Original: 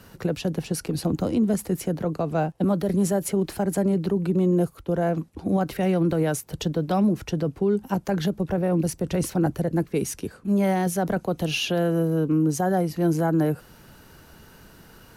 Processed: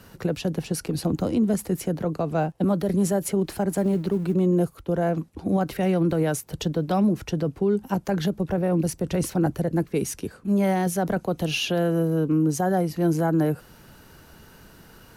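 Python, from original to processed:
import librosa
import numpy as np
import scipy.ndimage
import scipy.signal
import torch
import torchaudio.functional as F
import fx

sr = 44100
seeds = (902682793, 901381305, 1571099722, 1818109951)

y = fx.law_mismatch(x, sr, coded='A', at=(3.69, 4.34))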